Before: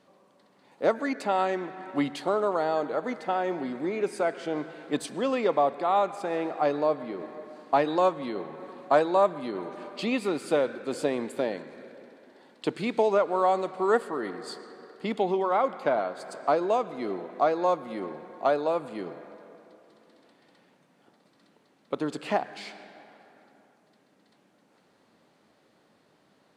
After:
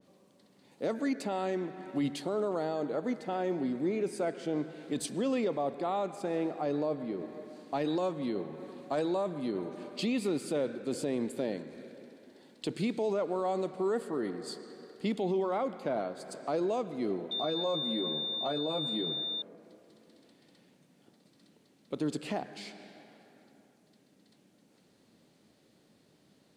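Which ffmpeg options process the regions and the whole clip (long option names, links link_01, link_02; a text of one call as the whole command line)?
ffmpeg -i in.wav -filter_complex "[0:a]asettb=1/sr,asplit=3[link_01][link_02][link_03];[link_01]atrim=end=17.314[link_04];[link_02]atrim=start=17.31:end=19.42,asetpts=PTS-STARTPTS,afade=type=in:duration=0.004:curve=qsin,afade=type=out:start_time=2.106:duration=0.004:curve=qsin,highpass=53,aeval=exprs='val(0)+0.0316*sin(2*PI*3600*n/s)':channel_layout=same,asplit=2[link_05][link_06];[link_06]adelay=13,volume=-3.5dB[link_07];[link_05][link_07]amix=inputs=2:normalize=0,atrim=end_sample=93051[link_08];[link_03]atrim=start=19.416[link_09];[link_04][link_08]acrossfade=duration=0.004:curve1=hsin:curve2=qsin[link_10];[link_10][link_09]acrossfade=duration=0.004:curve1=qsin:curve2=hsin,equalizer=frequency=1100:width=0.52:gain=-13,alimiter=level_in=3dB:limit=-24dB:level=0:latency=1:release=17,volume=-3dB,adynamicequalizer=threshold=0.002:dfrequency=1900:dqfactor=0.7:tfrequency=1900:tqfactor=0.7:attack=5:release=100:ratio=0.375:range=2.5:mode=cutabove:tftype=highshelf,volume=4dB" out.wav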